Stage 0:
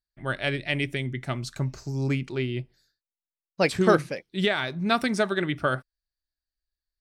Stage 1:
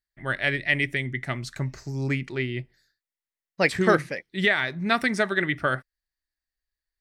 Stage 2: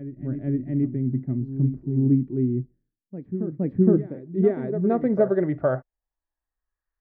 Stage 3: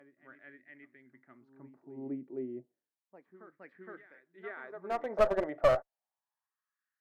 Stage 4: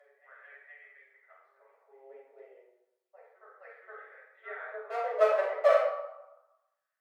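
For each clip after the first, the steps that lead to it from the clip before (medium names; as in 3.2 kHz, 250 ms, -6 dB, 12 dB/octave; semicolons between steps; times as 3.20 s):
peaking EQ 1.9 kHz +11 dB 0.43 oct; trim -1 dB
reverse echo 466 ms -10.5 dB; low-pass sweep 270 Hz -> 1.2 kHz, 3.83–6.80 s; harmonic-percussive split harmonic +5 dB; trim -1.5 dB
LFO high-pass sine 0.31 Hz 620–1700 Hz; one-sided clip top -25.5 dBFS; trim -4 dB
rippled Chebyshev high-pass 440 Hz, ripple 3 dB; flange 0.5 Hz, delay 6.7 ms, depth 6.1 ms, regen +31%; reverberation RT60 1.0 s, pre-delay 5 ms, DRR -7 dB; trim -2 dB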